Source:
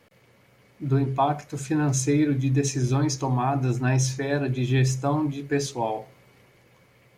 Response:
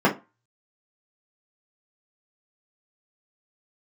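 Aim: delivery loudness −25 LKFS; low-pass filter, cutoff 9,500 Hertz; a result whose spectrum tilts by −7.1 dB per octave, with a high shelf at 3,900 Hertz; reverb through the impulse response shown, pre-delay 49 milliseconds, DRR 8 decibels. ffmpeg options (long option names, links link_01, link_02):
-filter_complex "[0:a]lowpass=9500,highshelf=frequency=3900:gain=-8,asplit=2[link_01][link_02];[1:a]atrim=start_sample=2205,adelay=49[link_03];[link_02][link_03]afir=irnorm=-1:irlink=0,volume=-27dB[link_04];[link_01][link_04]amix=inputs=2:normalize=0,volume=-1.5dB"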